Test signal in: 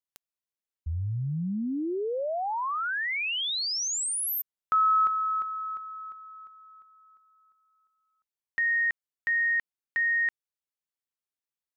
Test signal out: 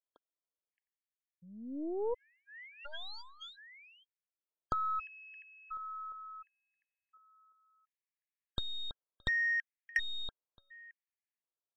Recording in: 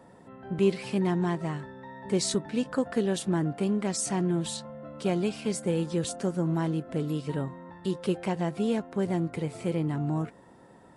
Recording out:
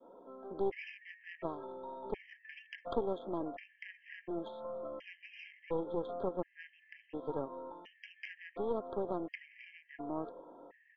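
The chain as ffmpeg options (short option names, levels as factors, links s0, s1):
-af "adynamicequalizer=threshold=0.00794:dfrequency=770:dqfactor=0.83:tfrequency=770:tqfactor=0.83:attack=5:release=100:ratio=0.375:range=2.5:mode=boostabove:tftype=bell,acompressor=threshold=0.00708:ratio=2:attack=50:release=70:knee=6:detection=peak,highpass=f=330:w=0.5412,highpass=f=330:w=1.3066,equalizer=f=370:t=q:w=4:g=-3,equalizer=f=800:t=q:w=4:g=-8,equalizer=f=1200:t=q:w=4:g=-8,lowpass=f=2300:w=0.5412,lowpass=f=2300:w=1.3066,aresample=8000,aeval=exprs='clip(val(0),-1,0.0224)':c=same,aresample=44100,aecho=1:1:620:0.0891,aeval=exprs='0.0841*(cos(1*acos(clip(val(0)/0.0841,-1,1)))-cos(1*PI/2))+0.00944*(cos(3*acos(clip(val(0)/0.0841,-1,1)))-cos(3*PI/2))+0.015*(cos(4*acos(clip(val(0)/0.0841,-1,1)))-cos(4*PI/2))':c=same,asuperstop=centerf=1500:order=8:qfactor=6.5,afftfilt=real='re*gt(sin(2*PI*0.7*pts/sr)*(1-2*mod(floor(b*sr/1024/1600),2)),0)':imag='im*gt(sin(2*PI*0.7*pts/sr)*(1-2*mod(floor(b*sr/1024/1600),2)),0)':win_size=1024:overlap=0.75,volume=2.11"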